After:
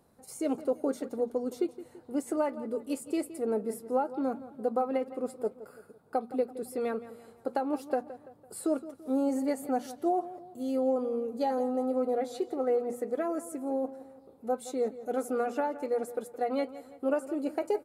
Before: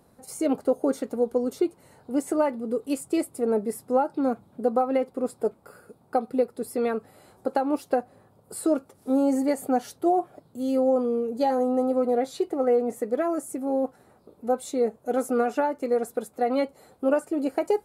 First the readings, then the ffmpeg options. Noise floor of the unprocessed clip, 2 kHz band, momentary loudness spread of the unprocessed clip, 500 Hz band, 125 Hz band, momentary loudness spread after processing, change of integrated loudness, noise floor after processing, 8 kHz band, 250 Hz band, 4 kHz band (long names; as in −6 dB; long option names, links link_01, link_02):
−60 dBFS, −6.0 dB, 6 LU, −6.0 dB, can't be measured, 8 LU, −6.0 dB, −58 dBFS, −6.0 dB, −6.0 dB, −6.0 dB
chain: -filter_complex "[0:a]bandreject=frequency=60:width_type=h:width=6,bandreject=frequency=120:width_type=h:width=6,bandreject=frequency=180:width_type=h:width=6,bandreject=frequency=240:width_type=h:width=6,asplit=2[link_01][link_02];[link_02]adelay=168,lowpass=frequency=4100:poles=1,volume=-15dB,asplit=2[link_03][link_04];[link_04]adelay=168,lowpass=frequency=4100:poles=1,volume=0.46,asplit=2[link_05][link_06];[link_06]adelay=168,lowpass=frequency=4100:poles=1,volume=0.46,asplit=2[link_07][link_08];[link_08]adelay=168,lowpass=frequency=4100:poles=1,volume=0.46[link_09];[link_03][link_05][link_07][link_09]amix=inputs=4:normalize=0[link_10];[link_01][link_10]amix=inputs=2:normalize=0,volume=-6dB"